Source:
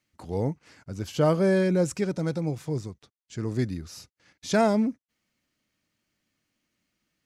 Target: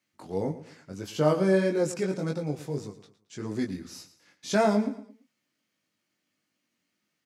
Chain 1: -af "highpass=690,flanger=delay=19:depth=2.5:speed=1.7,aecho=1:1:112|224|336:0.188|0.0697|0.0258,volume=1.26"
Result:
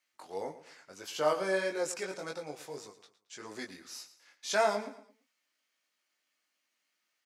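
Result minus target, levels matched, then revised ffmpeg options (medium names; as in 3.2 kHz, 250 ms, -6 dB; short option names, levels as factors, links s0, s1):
125 Hz band -15.0 dB
-af "highpass=170,flanger=delay=19:depth=2.5:speed=1.7,aecho=1:1:112|224|336:0.188|0.0697|0.0258,volume=1.26"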